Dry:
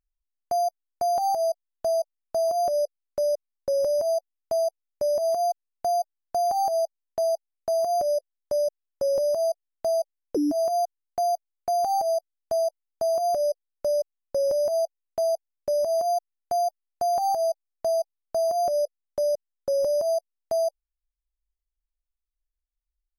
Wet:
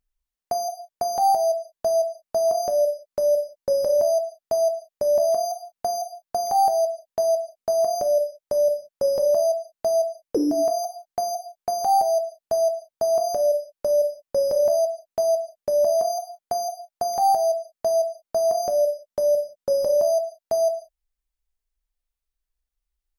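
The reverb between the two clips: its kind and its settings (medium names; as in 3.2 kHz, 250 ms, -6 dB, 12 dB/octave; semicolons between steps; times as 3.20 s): gated-style reverb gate 210 ms falling, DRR 5.5 dB; trim +3.5 dB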